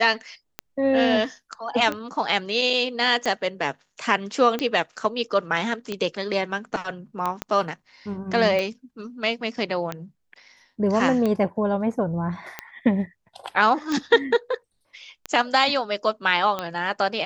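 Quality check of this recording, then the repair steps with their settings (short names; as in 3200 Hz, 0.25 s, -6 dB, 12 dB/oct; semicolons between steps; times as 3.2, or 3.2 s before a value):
tick 45 rpm -13 dBFS
7.42 pop -12 dBFS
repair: de-click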